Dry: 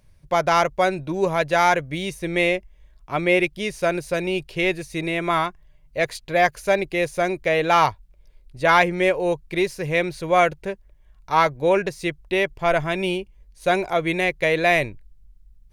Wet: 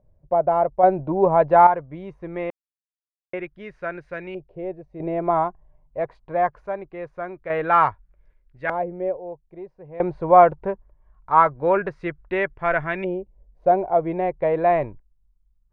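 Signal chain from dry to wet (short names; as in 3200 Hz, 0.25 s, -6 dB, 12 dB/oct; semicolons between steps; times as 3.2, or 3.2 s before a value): random-step tremolo 1.2 Hz, depth 100%; LFO low-pass saw up 0.23 Hz 620–1800 Hz; gain +1 dB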